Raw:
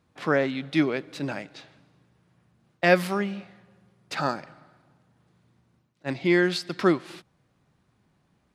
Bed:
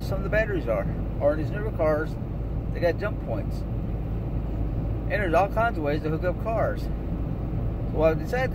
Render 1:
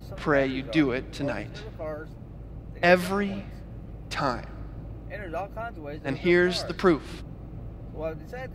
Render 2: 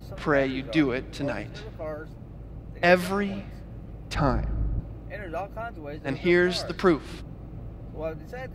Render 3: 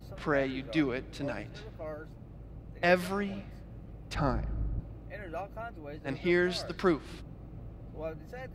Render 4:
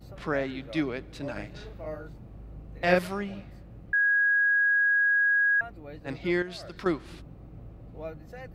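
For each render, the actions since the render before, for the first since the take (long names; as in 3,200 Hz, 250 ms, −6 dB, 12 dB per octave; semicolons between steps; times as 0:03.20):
mix in bed −11.5 dB
0:04.15–0:04.80: spectral tilt −3 dB per octave
level −6 dB
0:01.32–0:02.99: double-tracking delay 39 ms −2.5 dB; 0:03.93–0:05.61: beep over 1,650 Hz −20 dBFS; 0:06.42–0:06.86: downward compressor 2.5 to 1, threshold −38 dBFS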